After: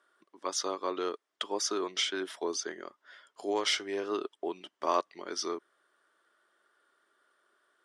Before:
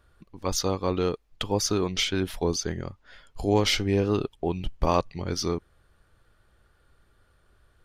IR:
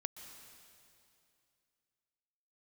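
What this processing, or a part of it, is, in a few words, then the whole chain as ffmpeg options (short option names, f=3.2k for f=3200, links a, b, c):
phone speaker on a table: -filter_complex "[0:a]asplit=3[a][b][c];[a]afade=t=out:st=3.51:d=0.02[d];[b]asubboost=boost=8:cutoff=83,afade=t=in:st=3.51:d=0.02,afade=t=out:st=4.1:d=0.02[e];[c]afade=t=in:st=4.1:d=0.02[f];[d][e][f]amix=inputs=3:normalize=0,highpass=f=380:w=0.5412,highpass=f=380:w=1.3066,equalizer=f=490:t=q:w=4:g=-10,equalizer=f=800:t=q:w=4:g=-8,equalizer=f=2.5k:t=q:w=4:g=-9,equalizer=f=4.3k:t=q:w=4:g=-8,equalizer=f=6.6k:t=q:w=4:g=-5,lowpass=f=8.9k:w=0.5412,lowpass=f=8.9k:w=1.3066"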